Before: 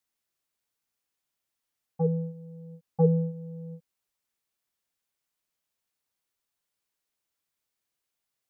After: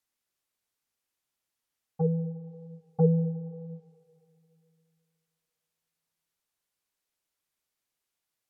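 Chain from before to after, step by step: low-pass that closes with the level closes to 600 Hz, closed at -28 dBFS; on a send: reverberation RT60 2.7 s, pre-delay 80 ms, DRR 18 dB

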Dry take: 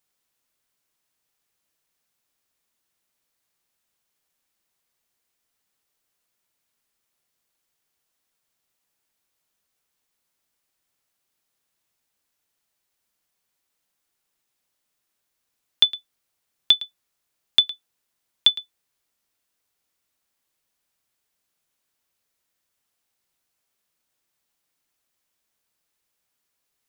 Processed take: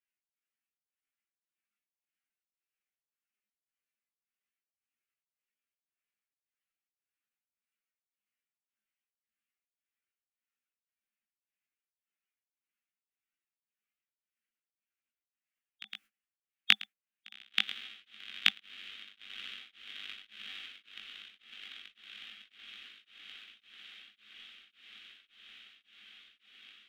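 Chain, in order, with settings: spectral gate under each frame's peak -15 dB weak; high-order bell 1.8 kHz +15 dB; static phaser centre 370 Hz, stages 4; small resonant body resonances 210/780 Hz, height 18 dB, ringing for 85 ms; chorus 0.2 Hz, delay 17 ms, depth 3.8 ms; echo that smears into a reverb 1952 ms, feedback 69%, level -13 dB; tremolo of two beating tones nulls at 1.8 Hz; trim +3 dB

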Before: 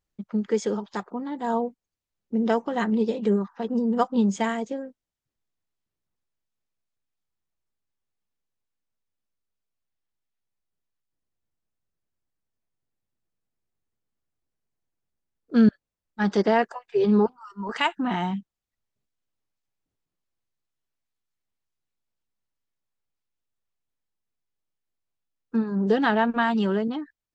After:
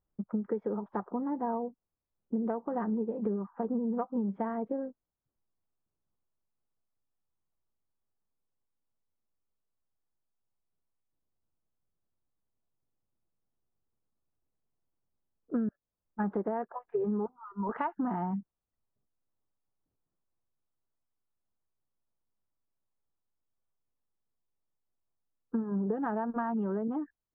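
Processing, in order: low-pass 1.3 kHz 24 dB/octave; compression 16:1, threshold -28 dBFS, peak gain reduction 16 dB

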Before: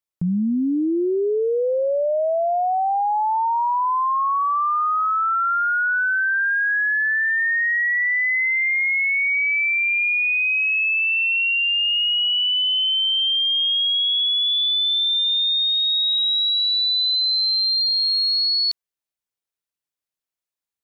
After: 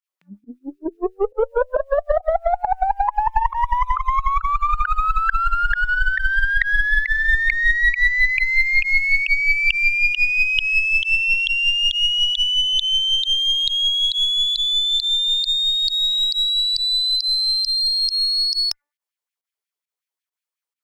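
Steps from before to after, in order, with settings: de-hum 292.2 Hz, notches 6; LFO high-pass sine 5.5 Hz 390–2100 Hz; Chebyshev shaper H 2 -17 dB, 7 -40 dB, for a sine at -7 dBFS; volume shaper 136 bpm, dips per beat 1, -20 dB, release 71 ms; formant shift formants +3 st

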